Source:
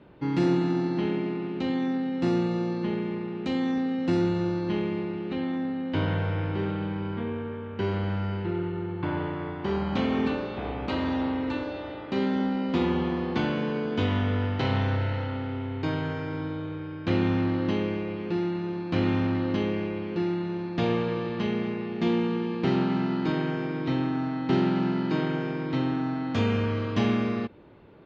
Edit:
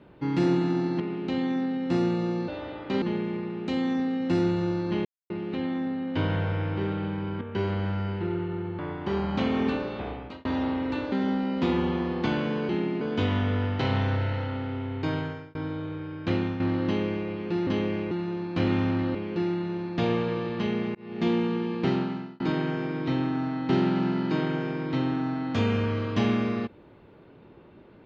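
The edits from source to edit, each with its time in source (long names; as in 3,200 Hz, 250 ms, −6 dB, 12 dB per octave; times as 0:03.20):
0:01.00–0:01.32: move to 0:13.81
0:04.83–0:05.08: silence
0:07.19–0:07.65: remove
0:09.03–0:09.37: remove
0:10.57–0:11.03: fade out
0:11.70–0:12.24: move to 0:02.80
0:15.98–0:16.35: fade out
0:17.05–0:17.40: fade out linear, to −9 dB
0:19.51–0:19.95: move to 0:18.47
0:21.75–0:22.02: fade in
0:22.66–0:23.20: fade out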